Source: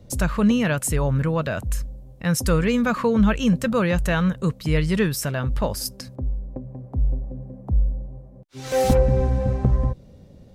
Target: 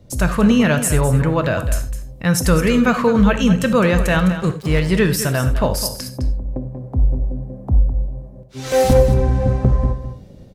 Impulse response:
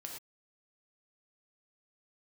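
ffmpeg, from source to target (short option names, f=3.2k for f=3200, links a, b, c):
-filter_complex "[0:a]dynaudnorm=f=120:g=3:m=6dB,asettb=1/sr,asplit=3[a][b][c];[a]atrim=end=4.194[d];[b]atrim=start=4.19:end=4.91,asetpts=PTS-STARTPTS,afade=t=in:d=0.004:c=qsin,afade=t=out:st=0.716:d=0.004:c=qsin,aeval=exprs='sgn(val(0))*max(abs(val(0))-0.0316,0)':c=same[e];[c]atrim=start=4.906[f];[d][e]acrossfade=d=0.004:c1=hsin:c2=qsin[g];[g][f]acrossfade=d=0.004:c1=qsin:c2=hsin,aecho=1:1:208:0.266,asplit=2[h][i];[1:a]atrim=start_sample=2205,afade=t=out:st=0.15:d=0.01,atrim=end_sample=7056[j];[i][j]afir=irnorm=-1:irlink=0,volume=2dB[k];[h][k]amix=inputs=2:normalize=0,volume=-4.5dB"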